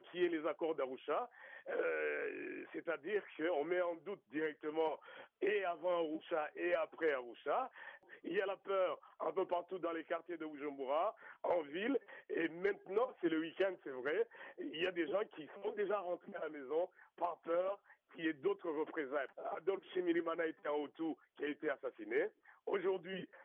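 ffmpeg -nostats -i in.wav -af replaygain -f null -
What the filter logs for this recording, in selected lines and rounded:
track_gain = +19.6 dB
track_peak = 0.040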